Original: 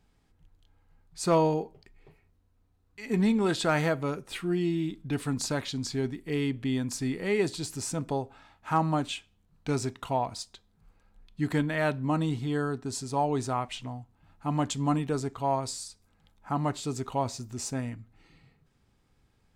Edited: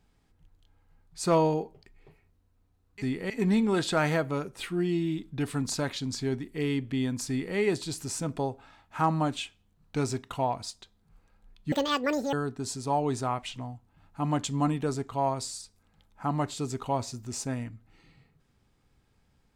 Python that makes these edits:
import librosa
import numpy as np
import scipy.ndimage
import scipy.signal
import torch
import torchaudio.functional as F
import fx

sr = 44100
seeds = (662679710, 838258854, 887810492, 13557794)

y = fx.edit(x, sr, fx.duplicate(start_s=7.01, length_s=0.28, to_s=3.02),
    fx.speed_span(start_s=11.44, length_s=1.15, speed=1.89), tone=tone)